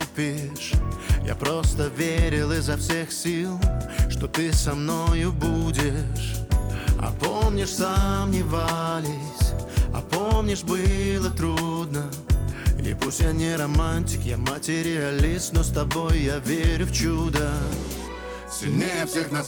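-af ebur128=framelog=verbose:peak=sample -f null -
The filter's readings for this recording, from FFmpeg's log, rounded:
Integrated loudness:
  I:         -24.8 LUFS
  Threshold: -34.8 LUFS
Loudness range:
  LRA:         0.9 LU
  Threshold: -44.6 LUFS
  LRA low:   -25.1 LUFS
  LRA high:  -24.1 LUFS
Sample peak:
  Peak:      -11.9 dBFS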